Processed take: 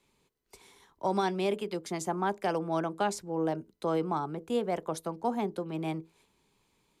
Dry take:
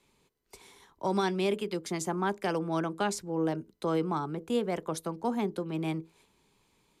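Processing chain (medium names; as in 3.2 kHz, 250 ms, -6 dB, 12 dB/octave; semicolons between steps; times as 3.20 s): dynamic bell 710 Hz, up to +6 dB, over -44 dBFS, Q 1.5; trim -2.5 dB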